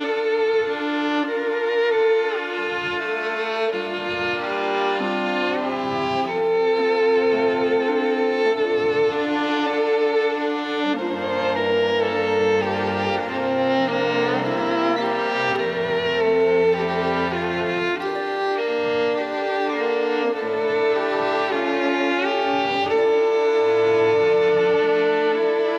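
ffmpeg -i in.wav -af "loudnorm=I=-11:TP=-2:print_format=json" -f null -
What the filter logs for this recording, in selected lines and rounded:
"input_i" : "-20.7",
"input_tp" : "-9.5",
"input_lra" : "3.6",
"input_thresh" : "-30.7",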